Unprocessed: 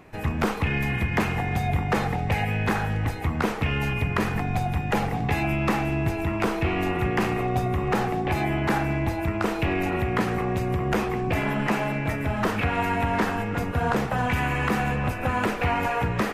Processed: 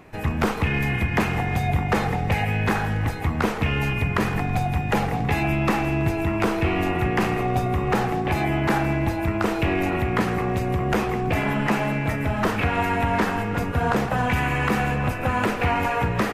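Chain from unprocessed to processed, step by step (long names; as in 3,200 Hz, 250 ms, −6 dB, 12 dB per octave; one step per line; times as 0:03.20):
repeating echo 164 ms, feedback 46%, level −16 dB
level +2 dB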